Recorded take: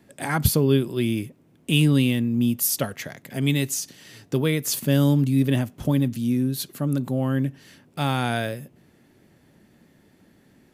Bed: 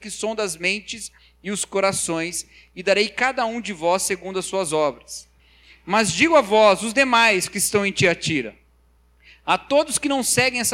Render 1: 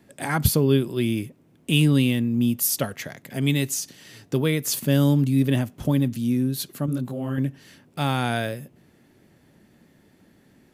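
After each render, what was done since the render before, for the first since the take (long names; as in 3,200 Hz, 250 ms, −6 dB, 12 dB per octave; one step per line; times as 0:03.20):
0:06.86–0:07.38: micro pitch shift up and down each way 38 cents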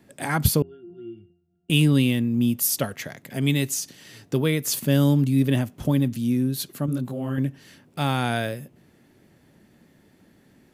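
0:00.62–0:01.70: resonances in every octave F, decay 0.44 s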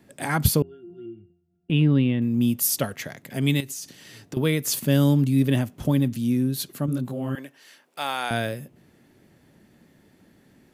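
0:01.06–0:02.22: high-frequency loss of the air 440 metres
0:03.60–0:04.37: downward compressor 10 to 1, threshold −30 dBFS
0:07.35–0:08.31: high-pass filter 610 Hz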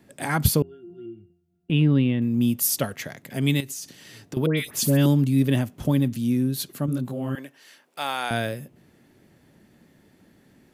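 0:04.46–0:05.06: all-pass dispersion highs, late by 113 ms, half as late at 1,800 Hz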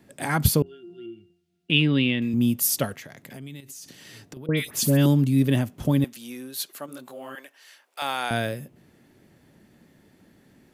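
0:00.66–0:02.34: meter weighting curve D
0:02.95–0:04.49: downward compressor 5 to 1, threshold −38 dBFS
0:06.04–0:08.02: high-pass filter 620 Hz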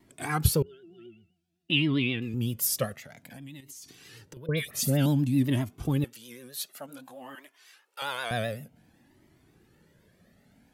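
pitch vibrato 7.7 Hz 97 cents
flanger whose copies keep moving one way rising 0.54 Hz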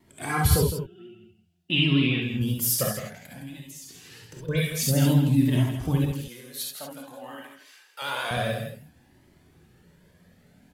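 single-tap delay 162 ms −9 dB
reverb whose tail is shaped and stops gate 90 ms rising, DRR 0 dB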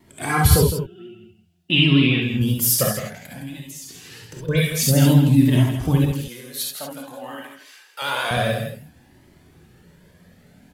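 level +6 dB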